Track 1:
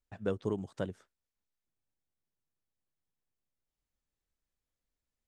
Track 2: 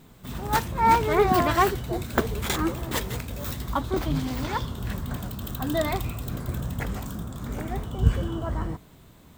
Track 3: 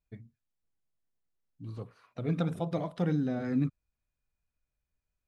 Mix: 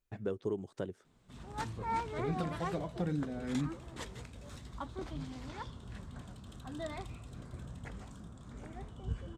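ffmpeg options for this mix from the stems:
-filter_complex "[0:a]equalizer=f=380:w=2.5:g=7,volume=-1.5dB[a];[1:a]lowpass=f=9.1k:w=0.5412,lowpass=f=9.1k:w=1.3066,adelay=1050,volume=-15.5dB[b];[2:a]volume=-3dB[c];[a][b][c]amix=inputs=3:normalize=0,alimiter=level_in=0.5dB:limit=-24dB:level=0:latency=1:release=412,volume=-0.5dB"

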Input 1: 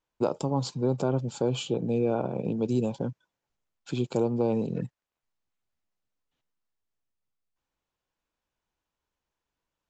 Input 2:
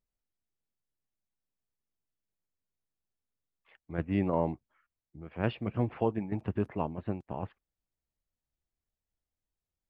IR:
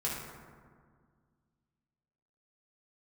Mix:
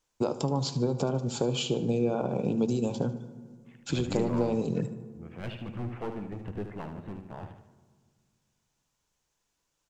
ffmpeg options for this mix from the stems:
-filter_complex "[0:a]acrossover=split=4900[a][b];[b]acompressor=threshold=-58dB:ratio=4:attack=1:release=60[c];[a][c]amix=inputs=2:normalize=0,equalizer=f=6.8k:t=o:w=1.3:g=11.5,acompressor=threshold=-28dB:ratio=5,volume=2.5dB,asplit=3[d][e][f];[e]volume=-16dB[g];[f]volume=-14.5dB[h];[1:a]adynamicequalizer=threshold=0.00891:dfrequency=720:dqfactor=0.81:tfrequency=720:tqfactor=0.81:attack=5:release=100:ratio=0.375:range=2.5:mode=cutabove:tftype=bell,aeval=exprs='clip(val(0),-1,0.0251)':c=same,volume=-3dB,asplit=3[i][j][k];[j]volume=-16.5dB[l];[k]volume=-7dB[m];[2:a]atrim=start_sample=2205[n];[g][l]amix=inputs=2:normalize=0[o];[o][n]afir=irnorm=-1:irlink=0[p];[h][m]amix=inputs=2:normalize=0,aecho=0:1:75|150|225|300|375|450:1|0.44|0.194|0.0852|0.0375|0.0165[q];[d][i][p][q]amix=inputs=4:normalize=0"

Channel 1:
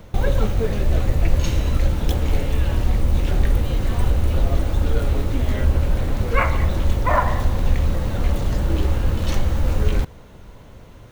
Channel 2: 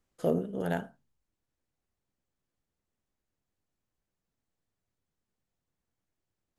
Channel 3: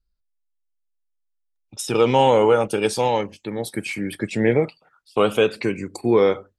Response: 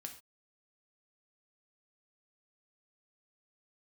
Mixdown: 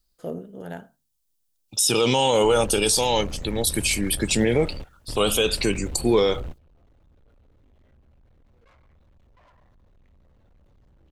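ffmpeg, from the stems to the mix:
-filter_complex "[0:a]highshelf=f=7.5k:g=-11.5,asoftclip=type=tanh:threshold=-22dB,adelay=2300,volume=-7.5dB[a];[1:a]volume=-4.5dB[b];[2:a]aexciter=amount=6:drive=2.9:freq=2.9k,volume=0.5dB,asplit=2[c][d];[d]apad=whole_len=591580[e];[a][e]sidechaingate=range=-25dB:threshold=-40dB:ratio=16:detection=peak[f];[f][b][c]amix=inputs=3:normalize=0,alimiter=limit=-10.5dB:level=0:latency=1:release=22"

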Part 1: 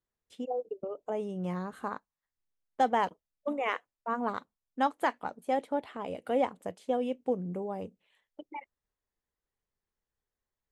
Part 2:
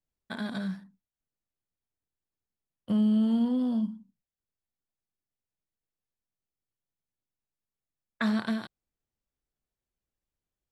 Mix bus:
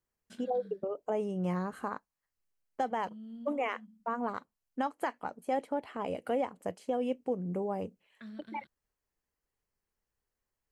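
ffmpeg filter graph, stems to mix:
-filter_complex "[0:a]bandreject=f=3.6k:w=5.3,volume=2dB,asplit=2[a][b];[1:a]highshelf=f=3.8k:g=-8.5,acompressor=threshold=-40dB:ratio=1.5,equalizer=f=900:t=o:w=1:g=-14,volume=-13dB[c];[b]apad=whole_len=472583[d];[c][d]sidechaincompress=threshold=-29dB:ratio=8:attack=16:release=131[e];[a][e]amix=inputs=2:normalize=0,alimiter=limit=-22dB:level=0:latency=1:release=270"

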